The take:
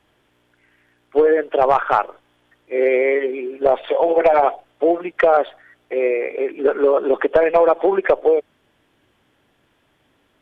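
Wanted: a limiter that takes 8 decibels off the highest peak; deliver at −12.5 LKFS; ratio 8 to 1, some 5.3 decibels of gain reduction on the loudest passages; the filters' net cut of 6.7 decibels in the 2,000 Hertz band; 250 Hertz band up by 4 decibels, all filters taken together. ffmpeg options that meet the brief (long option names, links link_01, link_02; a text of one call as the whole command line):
ffmpeg -i in.wav -af "equalizer=frequency=250:width_type=o:gain=6.5,equalizer=frequency=2000:width_type=o:gain=-8.5,acompressor=threshold=-14dB:ratio=8,volume=10dB,alimiter=limit=-2dB:level=0:latency=1" out.wav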